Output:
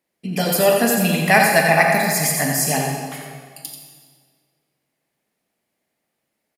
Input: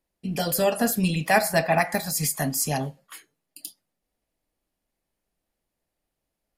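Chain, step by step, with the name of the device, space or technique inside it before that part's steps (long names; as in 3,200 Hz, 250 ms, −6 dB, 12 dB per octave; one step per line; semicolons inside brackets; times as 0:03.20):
PA in a hall (high-pass filter 150 Hz 12 dB per octave; parametric band 2,100 Hz +6 dB 0.48 octaves; single-tap delay 88 ms −7 dB; convolution reverb RT60 1.8 s, pre-delay 33 ms, DRR 2.5 dB)
level +4 dB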